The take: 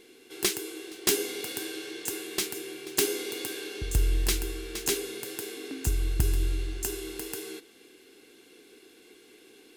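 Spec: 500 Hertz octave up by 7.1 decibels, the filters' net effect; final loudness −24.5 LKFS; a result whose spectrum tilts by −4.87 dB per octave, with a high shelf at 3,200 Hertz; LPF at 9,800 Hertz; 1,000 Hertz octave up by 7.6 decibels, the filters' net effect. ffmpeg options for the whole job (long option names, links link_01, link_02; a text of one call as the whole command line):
ffmpeg -i in.wav -af "lowpass=9800,equalizer=frequency=500:width_type=o:gain=8.5,equalizer=frequency=1000:width_type=o:gain=8,highshelf=frequency=3200:gain=-8,volume=6dB" out.wav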